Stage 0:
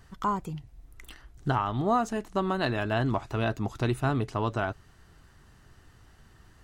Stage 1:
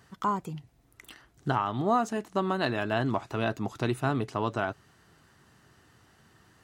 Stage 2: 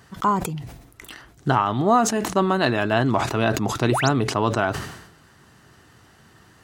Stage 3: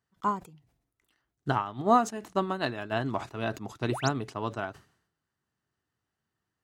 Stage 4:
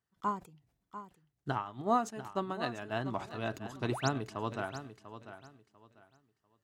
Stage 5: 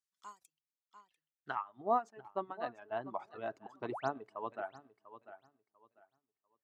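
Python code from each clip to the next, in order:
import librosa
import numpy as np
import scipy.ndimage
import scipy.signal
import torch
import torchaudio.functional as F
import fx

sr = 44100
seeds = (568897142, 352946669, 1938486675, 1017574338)

y1 = scipy.signal.sosfilt(scipy.signal.butter(2, 130.0, 'highpass', fs=sr, output='sos'), x)
y2 = fx.spec_paint(y1, sr, seeds[0], shape='rise', start_s=3.89, length_s=0.2, low_hz=250.0, high_hz=7900.0, level_db=-35.0)
y2 = fx.sustainer(y2, sr, db_per_s=66.0)
y2 = y2 * 10.0 ** (7.5 / 20.0)
y3 = fx.upward_expand(y2, sr, threshold_db=-34.0, expansion=2.5)
y3 = y3 * 10.0 ** (-3.0 / 20.0)
y4 = fx.rider(y3, sr, range_db=10, speed_s=2.0)
y4 = fx.echo_feedback(y4, sr, ms=694, feedback_pct=24, wet_db=-12.0)
y4 = y4 * 10.0 ** (-6.5 / 20.0)
y5 = fx.filter_sweep_bandpass(y4, sr, from_hz=7000.0, to_hz=720.0, start_s=0.79, end_s=1.86, q=1.0)
y5 = fx.dereverb_blind(y5, sr, rt60_s=1.8)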